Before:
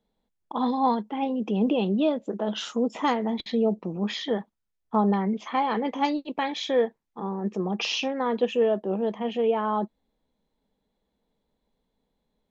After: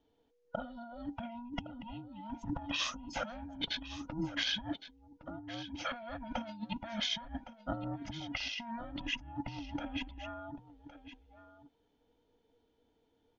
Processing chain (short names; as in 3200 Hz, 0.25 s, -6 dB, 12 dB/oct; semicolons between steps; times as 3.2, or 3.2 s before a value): band inversion scrambler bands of 500 Hz; limiter -20 dBFS, peak gain reduction 8.5 dB; negative-ratio compressor -34 dBFS, ratio -0.5; de-hum 426.8 Hz, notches 2; on a send: echo 1.039 s -14 dB; on the sum: downsampling 16000 Hz; wide varispeed 0.934×; gain -5 dB